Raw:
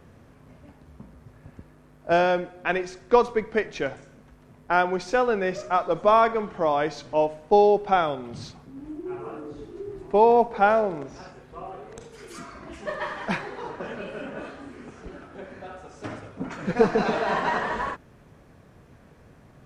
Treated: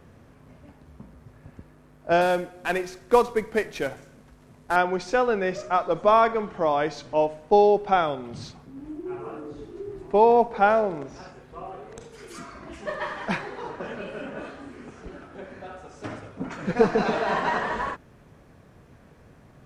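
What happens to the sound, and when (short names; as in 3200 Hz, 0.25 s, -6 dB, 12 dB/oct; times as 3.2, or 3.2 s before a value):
2.21–4.76 CVSD 64 kbps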